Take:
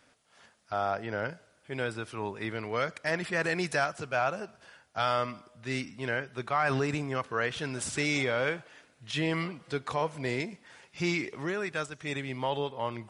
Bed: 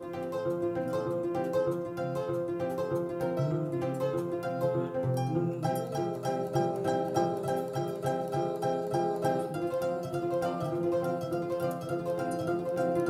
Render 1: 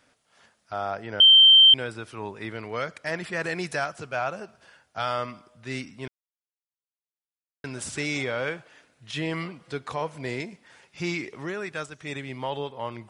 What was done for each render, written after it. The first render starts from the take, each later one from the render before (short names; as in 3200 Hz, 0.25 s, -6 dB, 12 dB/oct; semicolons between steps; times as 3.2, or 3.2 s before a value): 1.2–1.74 bleep 3130 Hz -10 dBFS; 6.08–7.64 mute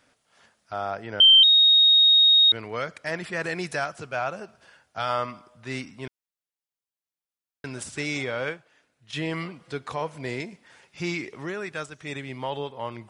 1.43–2.52 bleep 3740 Hz -13 dBFS; 5.09–6.01 bell 960 Hz +4.5 dB 0.99 oct; 7.83–9.13 upward expander, over -44 dBFS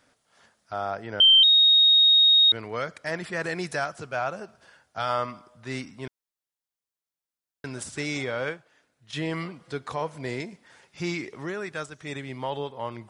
bell 2600 Hz -3.5 dB 0.57 oct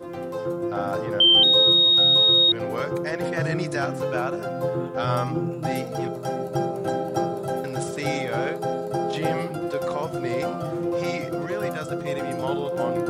add bed +3.5 dB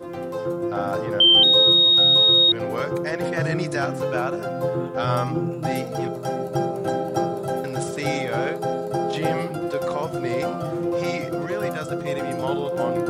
gain +1.5 dB